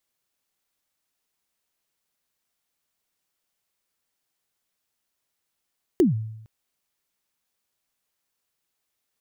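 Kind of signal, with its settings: kick drum length 0.46 s, from 400 Hz, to 110 Hz, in 0.14 s, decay 0.84 s, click on, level -12 dB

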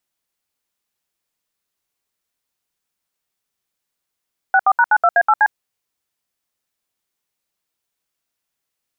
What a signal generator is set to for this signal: DTMF "64#92A8C", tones 54 ms, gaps 70 ms, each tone -12 dBFS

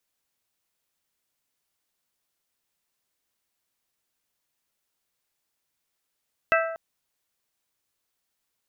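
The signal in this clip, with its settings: glass hit bell, length 0.24 s, lowest mode 657 Hz, modes 5, decay 0.99 s, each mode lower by 1 dB, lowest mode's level -19.5 dB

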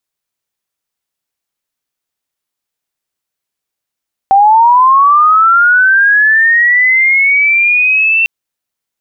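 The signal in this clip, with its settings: chirp linear 770 Hz -> 2700 Hz -3 dBFS -> -7 dBFS 3.95 s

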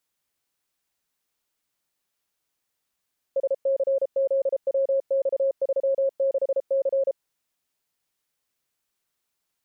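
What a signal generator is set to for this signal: Morse "SCZWX36C" 33 wpm 543 Hz -19 dBFS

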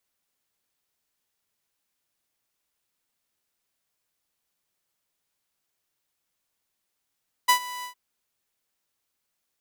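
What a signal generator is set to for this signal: ADSR saw 990 Hz, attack 15 ms, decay 92 ms, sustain -19 dB, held 0.36 s, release 0.101 s -11.5 dBFS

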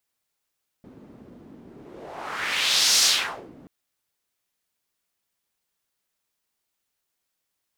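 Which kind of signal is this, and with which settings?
whoosh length 2.83 s, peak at 2.19, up 1.45 s, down 0.53 s, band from 260 Hz, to 5400 Hz, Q 2, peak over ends 29 dB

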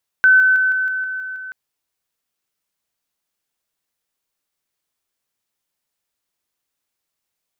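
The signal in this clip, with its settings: level ladder 1520 Hz -7.5 dBFS, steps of -3 dB, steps 8, 0.16 s 0.00 s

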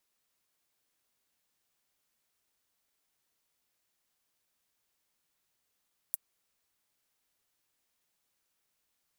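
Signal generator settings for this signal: closed hi-hat, high-pass 9900 Hz, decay 0.03 s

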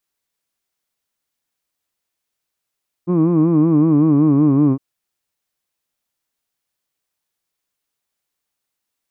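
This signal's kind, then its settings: formant vowel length 1.71 s, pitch 170 Hz, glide -3.5 st, vibrato depth 1.1 st, F1 300 Hz, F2 1100 Hz, F3 2400 Hz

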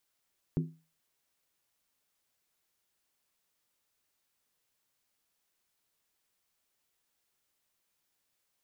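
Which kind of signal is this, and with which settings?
skin hit, lowest mode 161 Hz, decay 0.33 s, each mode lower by 5.5 dB, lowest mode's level -24 dB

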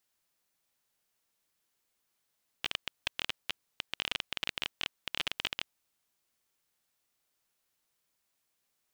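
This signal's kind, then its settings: random clicks 19/s -14 dBFS 3.13 s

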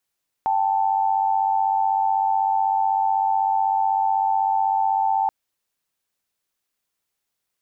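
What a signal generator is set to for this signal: chord G5/A5 sine, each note -20.5 dBFS 4.83 s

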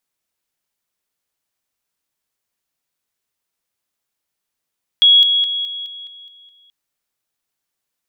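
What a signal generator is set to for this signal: level ladder 3330 Hz -6.5 dBFS, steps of -6 dB, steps 8, 0.21 s 0.00 s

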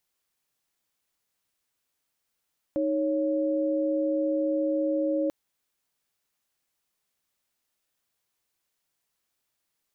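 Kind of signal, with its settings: chord D#4/C#5 sine, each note -26 dBFS 2.54 s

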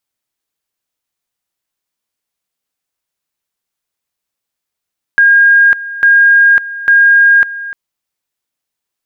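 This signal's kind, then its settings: two-level tone 1620 Hz -3.5 dBFS, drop 16.5 dB, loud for 0.55 s, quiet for 0.30 s, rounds 3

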